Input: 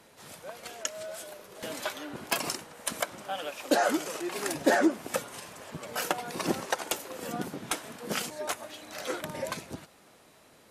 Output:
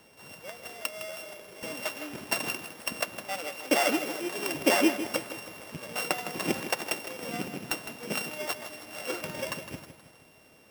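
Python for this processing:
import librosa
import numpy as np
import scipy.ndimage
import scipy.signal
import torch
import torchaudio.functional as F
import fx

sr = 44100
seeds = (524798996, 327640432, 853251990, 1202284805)

y = np.r_[np.sort(x[:len(x) // 16 * 16].reshape(-1, 16), axis=1).ravel(), x[len(x) // 16 * 16:]]
y = fx.echo_feedback(y, sr, ms=159, feedback_pct=48, wet_db=-11)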